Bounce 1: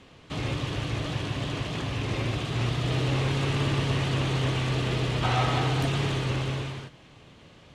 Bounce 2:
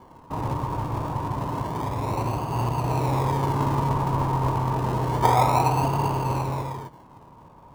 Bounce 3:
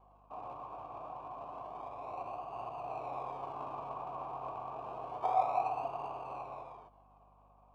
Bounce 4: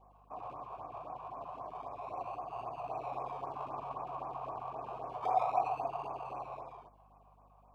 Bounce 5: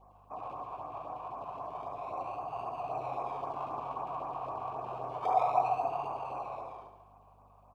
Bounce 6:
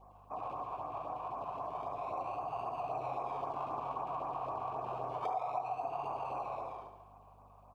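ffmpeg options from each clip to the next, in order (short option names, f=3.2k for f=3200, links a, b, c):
-filter_complex "[0:a]lowpass=f=950:t=q:w=11,asplit=2[a][b];[b]acrusher=samples=34:mix=1:aa=0.000001:lfo=1:lforange=20.4:lforate=0.29,volume=-7.5dB[c];[a][c]amix=inputs=2:normalize=0,volume=-2dB"
-filter_complex "[0:a]asplit=3[a][b][c];[a]bandpass=f=730:t=q:w=8,volume=0dB[d];[b]bandpass=f=1.09k:t=q:w=8,volume=-6dB[e];[c]bandpass=f=2.44k:t=q:w=8,volume=-9dB[f];[d][e][f]amix=inputs=3:normalize=0,aeval=exprs='val(0)+0.000794*(sin(2*PI*50*n/s)+sin(2*PI*2*50*n/s)/2+sin(2*PI*3*50*n/s)/3+sin(2*PI*4*50*n/s)/4+sin(2*PI*5*50*n/s)/5)':c=same,volume=-4dB"
-af "afftfilt=real='re*(1-between(b*sr/1024,240*pow(3800/240,0.5+0.5*sin(2*PI*3.8*pts/sr))/1.41,240*pow(3800/240,0.5+0.5*sin(2*PI*3.8*pts/sr))*1.41))':imag='im*(1-between(b*sr/1024,240*pow(3800/240,0.5+0.5*sin(2*PI*3.8*pts/sr))/1.41,240*pow(3800/240,0.5+0.5*sin(2*PI*3.8*pts/sr))*1.41))':win_size=1024:overlap=0.75,volume=1.5dB"
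-af "aecho=1:1:71|142|213|284|355|426|497:0.376|0.222|0.131|0.0772|0.0455|0.0269|0.0159,volume=2.5dB"
-af "acompressor=threshold=-35dB:ratio=5,volume=1dB"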